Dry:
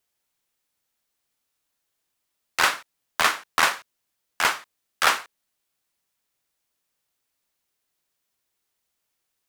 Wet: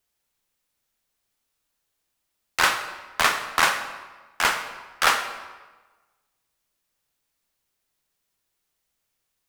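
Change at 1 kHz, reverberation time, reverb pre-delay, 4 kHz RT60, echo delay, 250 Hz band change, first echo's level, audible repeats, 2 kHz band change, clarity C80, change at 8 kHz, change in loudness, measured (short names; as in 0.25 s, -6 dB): +1.0 dB, 1.2 s, 24 ms, 0.95 s, none, +1.5 dB, none, none, +1.0 dB, 10.0 dB, +0.5 dB, 0.0 dB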